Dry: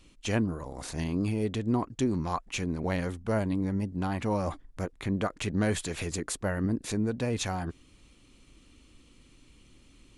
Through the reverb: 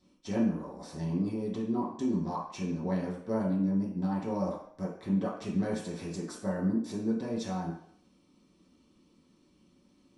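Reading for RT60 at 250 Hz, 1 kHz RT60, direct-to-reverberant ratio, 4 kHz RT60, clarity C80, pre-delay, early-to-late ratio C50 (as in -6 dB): 0.50 s, 0.65 s, -8.0 dB, 0.60 s, 8.0 dB, 3 ms, 5.0 dB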